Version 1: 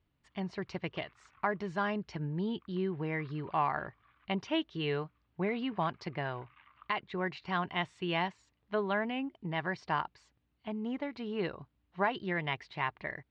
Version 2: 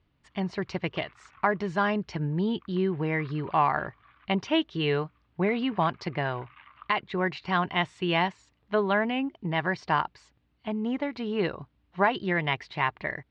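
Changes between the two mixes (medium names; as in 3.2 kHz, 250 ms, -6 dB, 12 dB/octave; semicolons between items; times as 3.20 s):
speech +7.0 dB; background +8.5 dB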